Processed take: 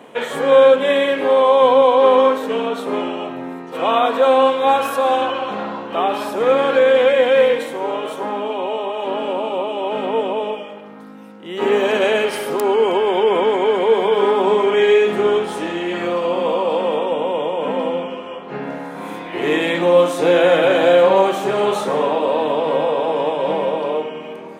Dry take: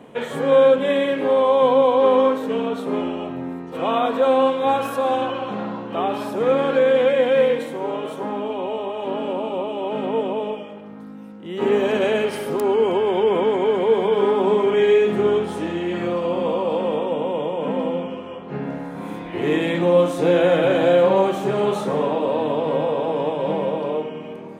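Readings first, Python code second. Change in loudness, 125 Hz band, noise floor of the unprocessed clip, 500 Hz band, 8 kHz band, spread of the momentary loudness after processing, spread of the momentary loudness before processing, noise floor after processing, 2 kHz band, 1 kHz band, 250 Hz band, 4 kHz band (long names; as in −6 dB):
+3.5 dB, −4.0 dB, −36 dBFS, +3.0 dB, can't be measured, 13 LU, 13 LU, −34 dBFS, +6.0 dB, +5.0 dB, −0.5 dB, +6.5 dB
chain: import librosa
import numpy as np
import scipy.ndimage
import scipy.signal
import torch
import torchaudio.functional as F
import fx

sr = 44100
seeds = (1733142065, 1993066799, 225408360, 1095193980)

y = fx.highpass(x, sr, hz=540.0, slope=6)
y = y * 10.0 ** (6.5 / 20.0)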